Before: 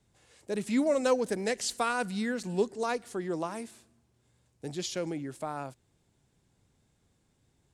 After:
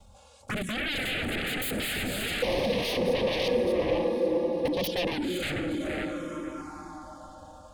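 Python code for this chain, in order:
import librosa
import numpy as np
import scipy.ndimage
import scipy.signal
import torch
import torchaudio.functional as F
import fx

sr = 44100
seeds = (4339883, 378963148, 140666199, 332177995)

y = fx.level_steps(x, sr, step_db=18)
y = fx.high_shelf(y, sr, hz=4700.0, db=-11.0)
y = fx.hum_notches(y, sr, base_hz=60, count=5)
y = y + 0.89 * np.pad(y, (int(3.6 * sr / 1000.0), 0))[:len(y)]
y = fx.echo_diffused(y, sr, ms=515, feedback_pct=44, wet_db=-6.0)
y = fx.fold_sine(y, sr, drive_db=19, ceiling_db=-22.5)
y = fx.peak_eq(y, sr, hz=530.0, db=13.5, octaves=0.34, at=(2.42, 5.1))
y = fx.env_phaser(y, sr, low_hz=290.0, high_hz=1400.0, full_db=-21.5)
y = y * 10.0 ** (-2.5 / 20.0)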